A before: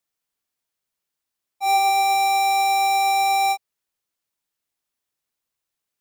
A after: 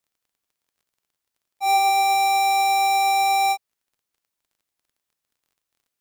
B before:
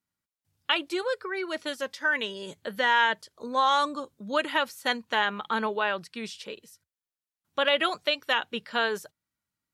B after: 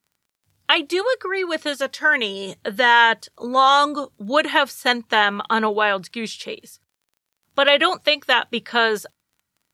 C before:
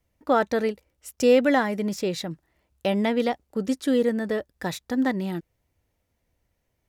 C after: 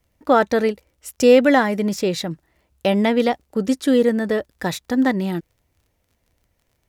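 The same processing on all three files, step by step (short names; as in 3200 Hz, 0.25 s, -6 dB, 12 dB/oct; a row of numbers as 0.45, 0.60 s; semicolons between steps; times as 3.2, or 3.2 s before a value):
crackle 27/s -54 dBFS; match loudness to -19 LUFS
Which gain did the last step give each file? 0.0, +8.5, +5.5 dB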